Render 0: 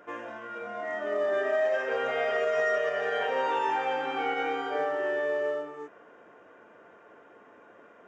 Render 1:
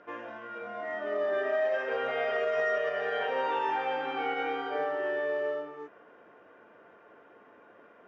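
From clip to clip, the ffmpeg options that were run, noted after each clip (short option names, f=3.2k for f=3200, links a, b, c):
-af "lowpass=f=5.2k:w=0.5412,lowpass=f=5.2k:w=1.3066,volume=-2dB"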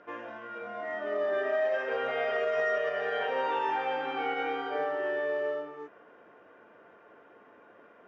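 -af anull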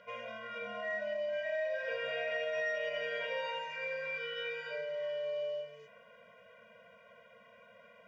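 -af "acompressor=threshold=-32dB:ratio=6,highshelf=f=1.9k:t=q:w=1.5:g=7.5,afftfilt=real='re*eq(mod(floor(b*sr/1024/230),2),0)':imag='im*eq(mod(floor(b*sr/1024/230),2),0)':win_size=1024:overlap=0.75"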